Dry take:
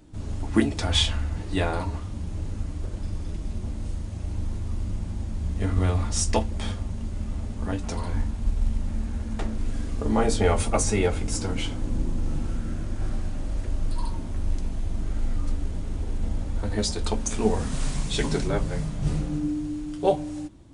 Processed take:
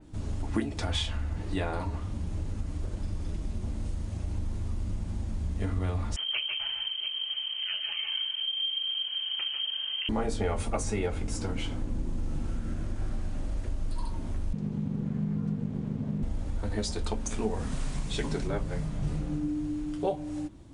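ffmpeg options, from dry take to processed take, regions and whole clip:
-filter_complex "[0:a]asettb=1/sr,asplit=3[a][b][c];[a]atrim=end=6.164[d];[b]atrim=start=6.16:end=10.09,asetpts=PTS-STARTPTS,afade=t=in:d=0.004:c=qsin,afade=t=out:st=3.926:d=0.004:c=qsin,aeval=exprs='(tanh(7.94*val(0)+0.4)-tanh(0.4))/7.94':c=same,aecho=1:1:146|158|174|690:0.422|0.299|0.141|0.178,atrim=end_sample=173313,lowpass=f=2.7k:t=q:w=0.5098,lowpass=f=2.7k:t=q:w=0.6013,lowpass=f=2.7k:t=q:w=0.9,lowpass=f=2.7k:t=q:w=2.563,afreqshift=-3200[e];[c]atrim=start=10.086[f];[d][e]acrossfade=d=0.004:c1=hsin:c2=qsin[g];[g][f]acrossfade=d=0.004:c1=qsin:c2=hsin,asettb=1/sr,asplit=3[h][i][j];[h]atrim=end=14.534[k];[i]atrim=start=14.53:end=16.23,asetpts=PTS-STARTPTS,afade=t=in:d=0.004:c=qsin,afade=t=out:st=1.696:d=0.004:c=qsin,aemphasis=mode=reproduction:type=50fm,aeval=exprs='val(0)*sin(2*PI*180*n/s)':c=same[l];[j]atrim=start=16.226[m];[k][l]acrossfade=d=0.004:c1=hsin:c2=qsin[n];[n][m]acrossfade=d=0.004:c1=qsin:c2=hsin,acompressor=threshold=-29dB:ratio=2.5,adynamicequalizer=threshold=0.002:dfrequency=3300:dqfactor=0.7:tfrequency=3300:tqfactor=0.7:attack=5:release=100:ratio=0.375:range=2:mode=cutabove:tftype=highshelf"

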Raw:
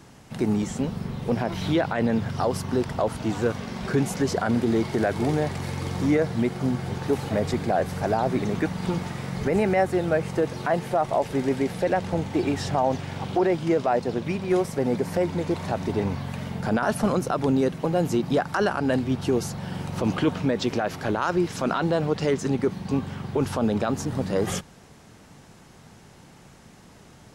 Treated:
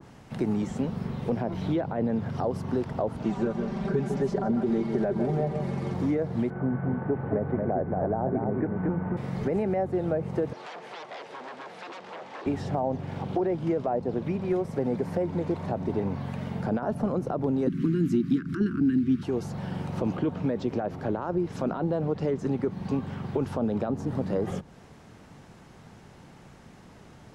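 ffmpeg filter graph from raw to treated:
-filter_complex "[0:a]asettb=1/sr,asplit=3[a][b][c];[a]atrim=end=3.234[d];[b]atrim=start=3.23:end=5.94,asetpts=PTS-STARTPTS,afade=t=in:d=0.004:c=qsin,afade=t=out:st=2.706:d=0.004:c=qsin,lowpass=11k,aecho=1:1:5.1:0.78,atrim=end_sample=119511,aecho=1:1:153:0.355,atrim=end_sample=119511[e];[c]atrim=start=5.936[f];[d][e]acrossfade=d=0.004:c1=hsin:c2=qsin[g];[g][f]acrossfade=d=0.004:c1=qsin:c2=hsin,asettb=1/sr,asplit=3[h][i][j];[h]atrim=end=6.504[k];[i]atrim=start=6.5:end=9.17,asetpts=PTS-STARTPTS,afade=t=in:d=0.004:c=qsin,afade=t=out:st=2.666:d=0.004:c=qsin,lowpass=f=1.9k:w=0.5412,lowpass=f=1.9k:w=1.3066,aecho=1:1:229:0.631,atrim=end_sample=117747,aeval=exprs='val(0)+0.00794*sin(2*PI*1500*n/s)':c=same[l];[j]atrim=start=9.166[m];[k][l]acrossfade=d=0.004:c1=hsin:c2=qsin[n];[n][m]acrossfade=d=0.004:c1=qsin:c2=hsin,asettb=1/sr,asplit=3[o][p][q];[o]atrim=end=10.534[r];[p]atrim=start=10.53:end=12.46,asetpts=PTS-STARTPTS,afade=t=in:d=0.004:c=qsin,afade=t=out:st=1.926:d=0.004:c=qsin,aeval=exprs='0.0422*(abs(mod(val(0)/0.0422+3,4)-2)-1)':c=same,highpass=560,lowpass=6.5k[s];[q]atrim=start=12.456[t];[r][s]acrossfade=d=0.004:c1=hsin:c2=qsin[u];[u][t]acrossfade=d=0.004:c1=qsin:c2=hsin,asettb=1/sr,asplit=3[v][w][x];[v]atrim=end=17.674[y];[w]atrim=start=17.67:end=19.23,asetpts=PTS-STARTPTS,afade=t=in:d=0.004:c=qsin,afade=t=out:st=1.556:d=0.004:c=qsin,equalizer=f=270:t=o:w=1.9:g=15,acompressor=mode=upward:threshold=-17dB:ratio=2.5:attack=3.2:release=140:knee=2.83:detection=peak,asuperstop=centerf=670:order=8:qfactor=0.69[z];[x]atrim=start=19.226[aa];[y][z]acrossfade=d=0.004:c1=hsin:c2=qsin[ab];[ab][aa]acrossfade=d=0.004:c1=qsin:c2=hsin,highshelf=f=4.3k:g=-9.5,acrossover=split=110|800[ac][ad][ae];[ac]acompressor=threshold=-43dB:ratio=4[af];[ad]acompressor=threshold=-24dB:ratio=4[ag];[ae]acompressor=threshold=-44dB:ratio=4[ah];[af][ag][ah]amix=inputs=3:normalize=0,adynamicequalizer=threshold=0.00794:dfrequency=1600:dqfactor=0.7:tfrequency=1600:tqfactor=0.7:attack=5:release=100:ratio=0.375:range=2.5:mode=cutabove:tftype=highshelf"

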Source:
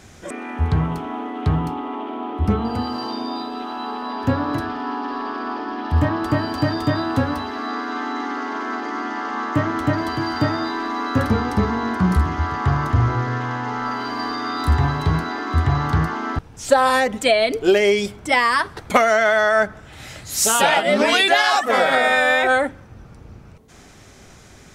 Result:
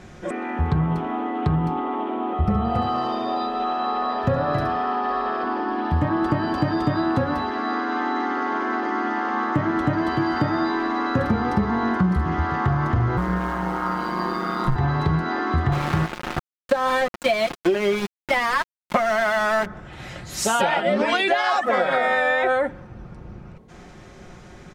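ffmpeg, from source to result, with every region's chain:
-filter_complex "[0:a]asettb=1/sr,asplit=3[a][b][c];[a]atrim=end=2.334[d];[b]atrim=start=2.33:end=5.44,asetpts=PTS-STARTPTS,afade=t=in:d=0.004:c=qsin,afade=t=out:st=3.106:d=0.004:c=qsin,aecho=1:1:1.6:0.57,atrim=end_sample=137151,aecho=1:1:70:0.501,atrim=end_sample=137151[e];[c]atrim=start=5.436[f];[d][e]acrossfade=d=0.004:c1=hsin:c2=qsin[g];[g][f]acrossfade=d=0.004:c1=qsin:c2=hsin,asettb=1/sr,asplit=3[h][i][j];[h]atrim=end=13.174[k];[i]atrim=start=13.17:end=14.76,asetpts=PTS-STARTPTS,afade=t=in:d=0.004:c=qsin,afade=t=out:st=1.586:d=0.004:c=qsin,acrusher=bits=7:dc=4:mix=0:aa=0.000001,aeval=exprs='val(0)*sin(2*PI*60*n/s)':c=same[l];[j]atrim=start=14.756[m];[k][l]acrossfade=d=0.004:c1=hsin:c2=qsin[n];[n][m]acrossfade=d=0.004:c1=qsin:c2=hsin,asettb=1/sr,asplit=3[o][p][q];[o]atrim=end=15.724[r];[p]atrim=start=15.72:end=19.66,asetpts=PTS-STARTPTS,afade=t=in:d=0.004:c=qsin,afade=t=out:st=3.936:d=0.004:c=qsin,highpass=81,bandreject=f=460:w=6.8,aeval=exprs='val(0)*gte(abs(val(0)),0.1)':c=same[s];[q]atrim=start=19.656[t];[r][s]acrossfade=d=0.004:c1=hsin:c2=qsin[u];[u][t]acrossfade=d=0.004:c1=qsin:c2=hsin,lowpass=f=1.8k:p=1,aecho=1:1:5.6:0.43,acompressor=threshold=-20dB:ratio=6,volume=3dB"

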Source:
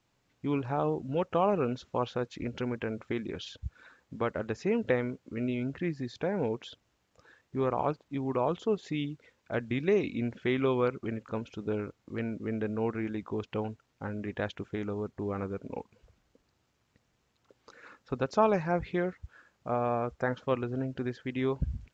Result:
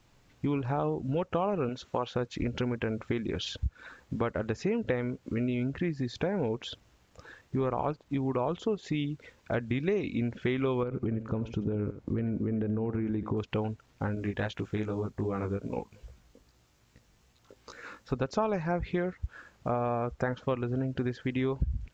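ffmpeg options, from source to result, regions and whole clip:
-filter_complex "[0:a]asettb=1/sr,asplit=3[a][b][c];[a]atrim=end=1.694[d];[b]atrim=start=1.69:end=2.16,asetpts=PTS-STARTPTS,afade=t=in:d=0.004:c=qsin,afade=t=out:st=0.466:d=0.004:c=qsin,lowshelf=f=210:g=-10.5,bandreject=f=5.1k:w=24[e];[c]atrim=start=2.156[f];[d][e]acrossfade=d=0.004:c1=hsin:c2=qsin[g];[g][f]acrossfade=d=0.004:c1=qsin:c2=hsin,asettb=1/sr,asplit=3[h][i][j];[h]atrim=end=10.834[k];[i]atrim=start=10.83:end=13.37,asetpts=PTS-STARTPTS,afade=t=in:d=0.004:c=qsin,afade=t=out:st=2.536:d=0.004:c=qsin,tiltshelf=f=930:g=6.5,acompressor=threshold=-30dB:ratio=5:attack=3.2:release=140:knee=1:detection=peak,aecho=1:1:86:0.2,atrim=end_sample=112014[l];[j]atrim=start=13.366[m];[k][l]acrossfade=d=0.004:c1=hsin:c2=qsin[n];[n][m]acrossfade=d=0.004:c1=qsin:c2=hsin,asettb=1/sr,asplit=3[o][p][q];[o]atrim=end=14.154[r];[p]atrim=start=14.15:end=18.13,asetpts=PTS-STARTPTS,afade=t=in:d=0.004:c=qsin,afade=t=out:st=3.976:d=0.004:c=qsin,highshelf=f=5.2k:g=7,flanger=delay=16:depth=3.9:speed=2.5[s];[q]atrim=start=18.126[t];[r][s]acrossfade=d=0.004:c1=hsin:c2=qsin[u];[u][t]acrossfade=d=0.004:c1=qsin:c2=hsin,lowshelf=f=73:g=11.5,acompressor=threshold=-38dB:ratio=3,volume=8.5dB"

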